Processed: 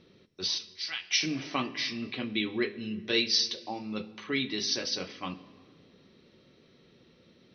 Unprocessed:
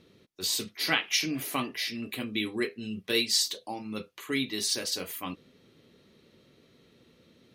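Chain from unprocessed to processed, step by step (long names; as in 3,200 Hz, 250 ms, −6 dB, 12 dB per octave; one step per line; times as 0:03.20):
0:00.58–0:01.11: first-order pre-emphasis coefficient 0.97
convolution reverb RT60 1.9 s, pre-delay 5 ms, DRR 13 dB
MP2 64 kbit/s 22,050 Hz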